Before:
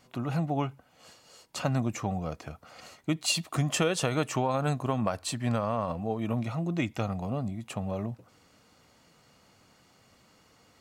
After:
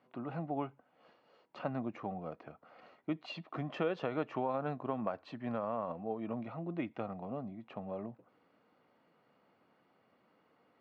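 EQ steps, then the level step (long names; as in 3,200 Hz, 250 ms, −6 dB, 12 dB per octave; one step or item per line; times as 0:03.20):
high-pass filter 250 Hz 12 dB per octave
high-frequency loss of the air 280 metres
head-to-tape spacing loss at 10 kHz 22 dB
−3.5 dB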